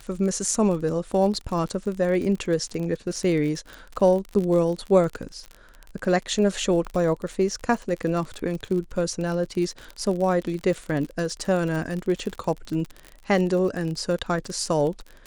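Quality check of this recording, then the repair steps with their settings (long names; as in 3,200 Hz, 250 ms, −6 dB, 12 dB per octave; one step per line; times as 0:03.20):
surface crackle 40 per second −29 dBFS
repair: click removal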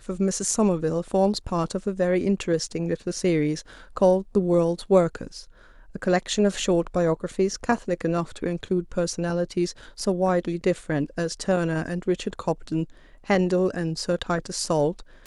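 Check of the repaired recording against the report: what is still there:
none of them is left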